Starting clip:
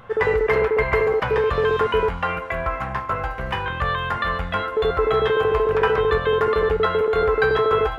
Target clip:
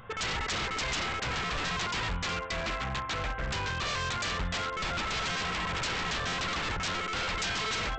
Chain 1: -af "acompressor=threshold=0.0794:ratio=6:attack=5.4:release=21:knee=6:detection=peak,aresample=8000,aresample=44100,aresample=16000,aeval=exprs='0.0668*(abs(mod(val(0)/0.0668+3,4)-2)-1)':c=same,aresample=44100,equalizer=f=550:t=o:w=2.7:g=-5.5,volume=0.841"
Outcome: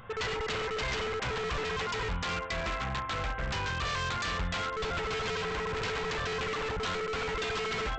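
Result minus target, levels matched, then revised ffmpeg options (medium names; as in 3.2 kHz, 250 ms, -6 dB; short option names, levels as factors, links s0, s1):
compression: peak gain reduction +7.5 dB
-af "aresample=8000,aresample=44100,aresample=16000,aeval=exprs='0.0668*(abs(mod(val(0)/0.0668+3,4)-2)-1)':c=same,aresample=44100,equalizer=f=550:t=o:w=2.7:g=-5.5,volume=0.841"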